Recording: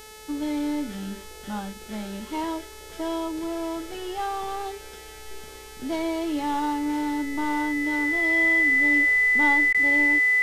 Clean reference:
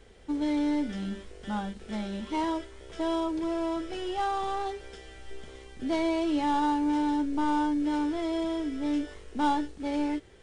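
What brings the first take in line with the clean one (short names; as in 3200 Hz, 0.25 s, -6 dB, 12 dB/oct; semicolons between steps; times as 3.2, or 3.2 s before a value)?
de-hum 432.6 Hz, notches 32; notch 2000 Hz, Q 30; interpolate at 9.73, 13 ms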